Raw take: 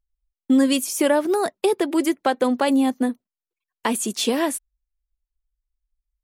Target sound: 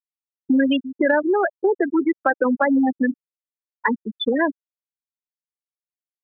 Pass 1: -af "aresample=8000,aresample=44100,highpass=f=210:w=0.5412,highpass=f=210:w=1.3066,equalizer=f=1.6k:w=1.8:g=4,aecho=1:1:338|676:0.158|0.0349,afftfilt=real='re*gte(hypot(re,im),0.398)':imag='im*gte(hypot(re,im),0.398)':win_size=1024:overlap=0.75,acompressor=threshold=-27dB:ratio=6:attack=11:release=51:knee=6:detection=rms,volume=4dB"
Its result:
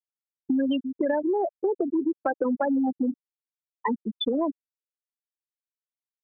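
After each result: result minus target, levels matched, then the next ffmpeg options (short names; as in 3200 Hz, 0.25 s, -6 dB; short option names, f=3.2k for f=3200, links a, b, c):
2000 Hz band -9.0 dB; compressor: peak gain reduction +5.5 dB
-af "aresample=8000,aresample=44100,highpass=f=210:w=0.5412,highpass=f=210:w=1.3066,equalizer=f=1.6k:w=1.8:g=11,aecho=1:1:338|676:0.158|0.0349,afftfilt=real='re*gte(hypot(re,im),0.398)':imag='im*gte(hypot(re,im),0.398)':win_size=1024:overlap=0.75,acompressor=threshold=-27dB:ratio=6:attack=11:release=51:knee=6:detection=rms,volume=4dB"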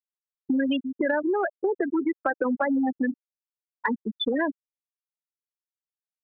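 compressor: peak gain reduction +7 dB
-af "aresample=8000,aresample=44100,highpass=f=210:w=0.5412,highpass=f=210:w=1.3066,equalizer=f=1.6k:w=1.8:g=11,aecho=1:1:338|676:0.158|0.0349,afftfilt=real='re*gte(hypot(re,im),0.398)':imag='im*gte(hypot(re,im),0.398)':win_size=1024:overlap=0.75,acompressor=threshold=-18.5dB:ratio=6:attack=11:release=51:knee=6:detection=rms,volume=4dB"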